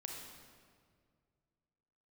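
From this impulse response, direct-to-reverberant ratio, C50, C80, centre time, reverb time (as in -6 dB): 0.0 dB, 1.5 dB, 3.5 dB, 74 ms, 2.0 s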